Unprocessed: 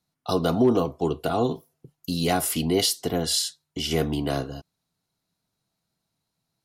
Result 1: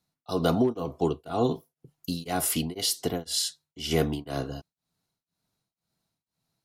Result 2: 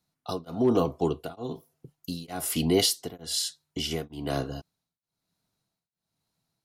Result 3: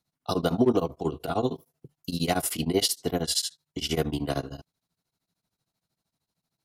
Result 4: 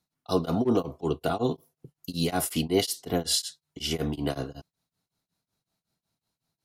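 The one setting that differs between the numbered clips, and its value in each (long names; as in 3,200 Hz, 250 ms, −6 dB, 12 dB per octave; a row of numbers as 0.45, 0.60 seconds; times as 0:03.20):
tremolo along a rectified sine, nulls at: 2, 1.1, 13, 5.4 Hertz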